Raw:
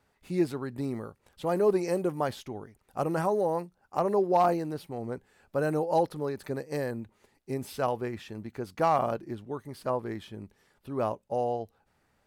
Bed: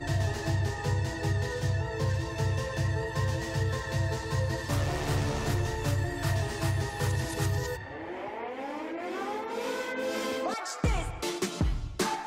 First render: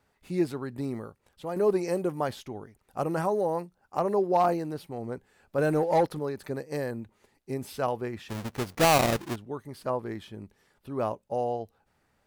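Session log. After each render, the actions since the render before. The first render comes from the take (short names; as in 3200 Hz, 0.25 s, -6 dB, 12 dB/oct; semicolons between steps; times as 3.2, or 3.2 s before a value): 0.95–1.56 fade out, to -6.5 dB; 5.58–6.19 sample leveller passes 1; 8.29–9.36 half-waves squared off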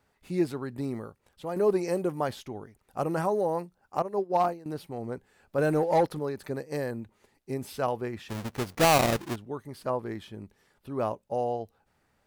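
4.02–4.66 upward expander 2.5:1, over -31 dBFS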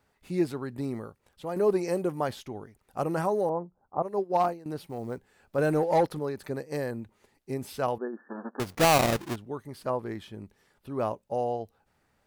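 3.49–4.03 inverse Chebyshev low-pass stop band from 3800 Hz, stop band 60 dB; 4.87–5.56 short-mantissa float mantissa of 4-bit; 7.98–8.6 brick-wall FIR band-pass 200–1800 Hz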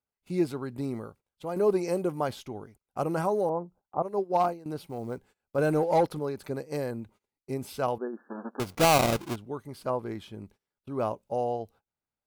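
notch 1800 Hz, Q 7.5; gate -53 dBFS, range -24 dB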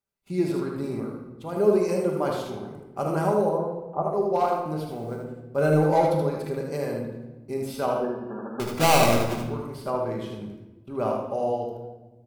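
echo 77 ms -4.5 dB; shoebox room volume 650 m³, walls mixed, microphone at 1.2 m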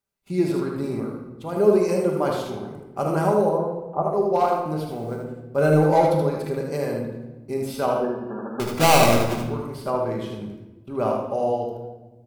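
gain +3 dB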